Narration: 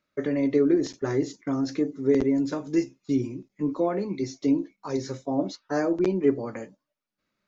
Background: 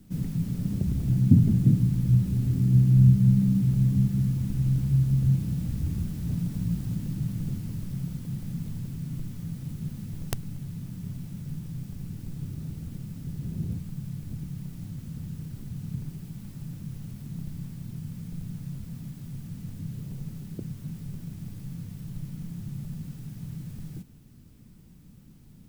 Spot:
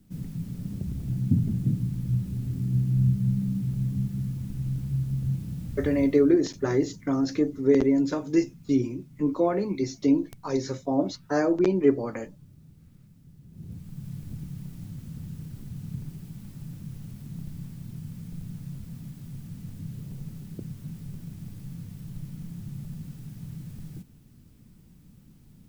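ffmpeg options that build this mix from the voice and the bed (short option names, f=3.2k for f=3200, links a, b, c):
-filter_complex "[0:a]adelay=5600,volume=1.5dB[a];[1:a]volume=9.5dB,afade=t=out:st=5.88:d=0.49:silence=0.281838,afade=t=in:st=13.5:d=0.63:silence=0.177828[b];[a][b]amix=inputs=2:normalize=0"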